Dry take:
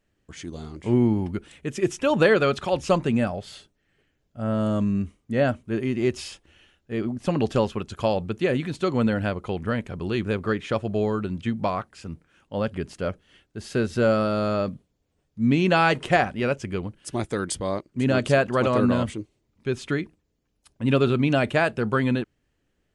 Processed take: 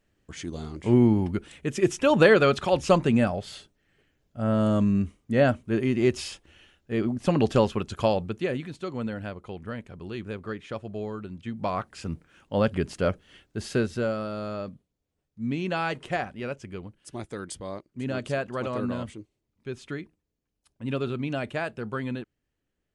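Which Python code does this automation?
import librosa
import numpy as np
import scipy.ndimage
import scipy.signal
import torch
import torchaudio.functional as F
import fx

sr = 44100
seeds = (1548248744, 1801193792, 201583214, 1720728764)

y = fx.gain(x, sr, db=fx.line((8.0, 1.0), (8.81, -9.5), (11.44, -9.5), (11.93, 3.0), (13.62, 3.0), (14.14, -9.0)))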